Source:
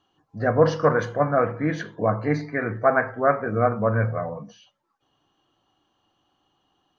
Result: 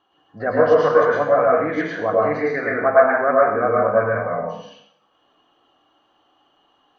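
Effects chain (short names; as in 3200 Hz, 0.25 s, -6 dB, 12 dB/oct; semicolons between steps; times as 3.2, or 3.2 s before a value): tone controls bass -13 dB, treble -13 dB; in parallel at +1 dB: compressor, threshold -34 dBFS, peak gain reduction 19.5 dB; on the sum: plate-style reverb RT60 0.67 s, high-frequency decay 0.95×, pre-delay 95 ms, DRR -4 dB; gain -1.5 dB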